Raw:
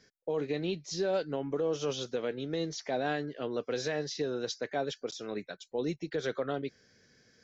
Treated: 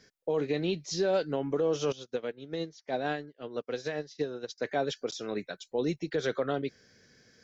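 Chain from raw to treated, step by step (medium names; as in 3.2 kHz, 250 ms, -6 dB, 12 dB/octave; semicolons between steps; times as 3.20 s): 1.92–4.58 s: upward expansion 2.5:1, over -48 dBFS; trim +3 dB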